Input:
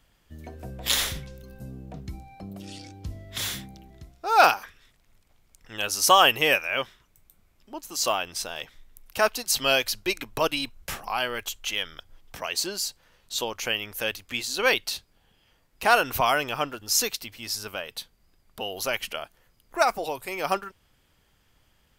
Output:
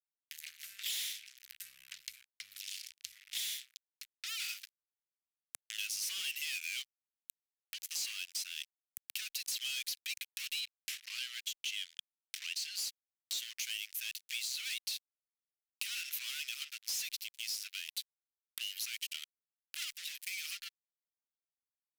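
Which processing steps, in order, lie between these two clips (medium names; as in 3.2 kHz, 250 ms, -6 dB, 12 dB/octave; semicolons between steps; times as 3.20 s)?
fuzz box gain 32 dB, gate -39 dBFS; 10.60–12.76 s: treble shelf 7.9 kHz -9.5 dB; compression 2:1, threshold -49 dBFS, peak gain reduction 18.5 dB; inverse Chebyshev high-pass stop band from 900 Hz, stop band 50 dB; saturation -27 dBFS, distortion -22 dB; three bands compressed up and down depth 70%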